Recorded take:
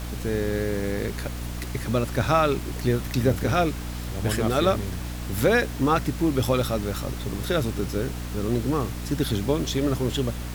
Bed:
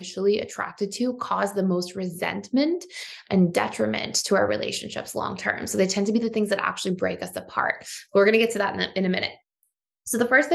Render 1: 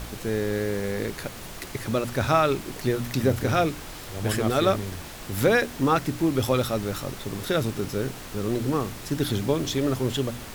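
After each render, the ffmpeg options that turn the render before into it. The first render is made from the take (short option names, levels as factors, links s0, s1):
-af "bandreject=f=60:t=h:w=4,bandreject=f=120:t=h:w=4,bandreject=f=180:t=h:w=4,bandreject=f=240:t=h:w=4,bandreject=f=300:t=h:w=4"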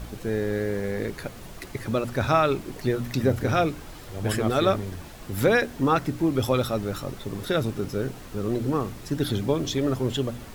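-af "afftdn=nr=7:nf=-39"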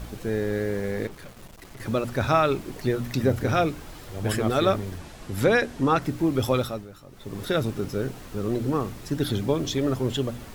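-filter_complex "[0:a]asettb=1/sr,asplit=3[s0][s1][s2];[s0]atrim=end=1.074[s3];[s1]atrim=start=1.07:end=1.8,asetpts=PTS-STARTPTS,afade=t=in:d=0.004:c=qsin,afade=t=out:st=0.726:d=0.004:c=qsin,aeval=exprs='(tanh(100*val(0)+0.7)-tanh(0.7))/100':c=same[s4];[s2]atrim=start=1.796[s5];[s3][s4]acrossfade=d=0.004:c1=hsin:c2=qsin[s6];[s6][s5]acrossfade=d=0.004:c1=qsin:c2=hsin,asettb=1/sr,asplit=3[s7][s8][s9];[s7]atrim=end=4.984[s10];[s8]atrim=start=4.98:end=6.02,asetpts=PTS-STARTPTS,afade=t=in:d=0.004:c=qsin,afade=t=out:st=1.036:d=0.004:c=qsin,lowpass=11000[s11];[s9]atrim=start=6.016[s12];[s10][s11]acrossfade=d=0.004:c1=hsin:c2=qsin[s13];[s13][s12]acrossfade=d=0.004:c1=qsin:c2=hsin,asplit=3[s14][s15][s16];[s14]atrim=end=6.88,asetpts=PTS-STARTPTS,afade=t=out:st=6.56:d=0.32:silence=0.177828[s17];[s15]atrim=start=6.88:end=7.1,asetpts=PTS-STARTPTS,volume=0.178[s18];[s16]atrim=start=7.1,asetpts=PTS-STARTPTS,afade=t=in:d=0.32:silence=0.177828[s19];[s17][s18][s19]concat=n=3:v=0:a=1"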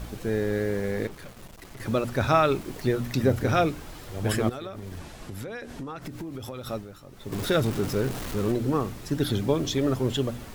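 -filter_complex "[0:a]asettb=1/sr,asplit=3[s0][s1][s2];[s0]atrim=end=2.424[s3];[s1]atrim=start=2.42:end=2.91,asetpts=PTS-STARTPTS,afade=t=in:d=0.004:c=qsin,afade=t=out:st=0.486:d=0.004:c=qsin,aeval=exprs='val(0)*gte(abs(val(0)),0.00631)':c=same[s4];[s2]atrim=start=2.906[s5];[s3][s4]acrossfade=d=0.004:c1=hsin:c2=qsin[s6];[s6][s5]acrossfade=d=0.004:c1=qsin:c2=hsin,asettb=1/sr,asplit=3[s7][s8][s9];[s7]atrim=end=4.494[s10];[s8]atrim=start=4.49:end=6.67,asetpts=PTS-STARTPTS,afade=t=in:d=0.004:c=qsin,afade=t=out:st=2.176:d=0.004:c=qsin,acompressor=threshold=0.0251:ratio=20:attack=3.2:release=140:knee=1:detection=peak[s11];[s9]atrim=start=6.666[s12];[s10][s11]acrossfade=d=0.004:c1=hsin:c2=qsin[s13];[s13][s12]acrossfade=d=0.004:c1=qsin:c2=hsin,asettb=1/sr,asplit=3[s14][s15][s16];[s14]atrim=end=7.324[s17];[s15]atrim=start=7.32:end=8.52,asetpts=PTS-STARTPTS,afade=t=in:d=0.004:c=qsin,afade=t=out:st=1.196:d=0.004:c=qsin,aeval=exprs='val(0)+0.5*0.0266*sgn(val(0))':c=same[s18];[s16]atrim=start=8.516[s19];[s17][s18]acrossfade=d=0.004:c1=hsin:c2=qsin[s20];[s20][s19]acrossfade=d=0.004:c1=qsin:c2=hsin"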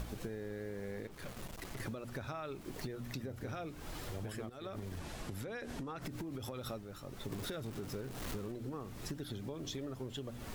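-af "alimiter=limit=0.1:level=0:latency=1:release=367,acompressor=threshold=0.0112:ratio=12"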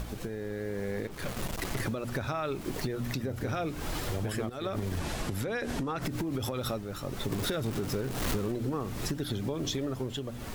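-filter_complex "[0:a]asplit=2[s0][s1];[s1]alimiter=level_in=4.22:limit=0.0631:level=0:latency=1:release=452,volume=0.237,volume=1.41[s2];[s0][s2]amix=inputs=2:normalize=0,dynaudnorm=f=200:g=7:m=1.68"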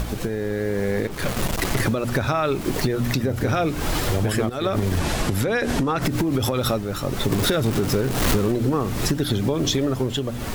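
-af "volume=3.55"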